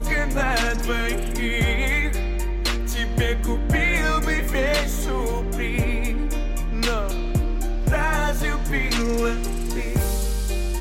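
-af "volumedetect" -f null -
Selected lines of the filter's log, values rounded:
mean_volume: -21.5 dB
max_volume: -12.6 dB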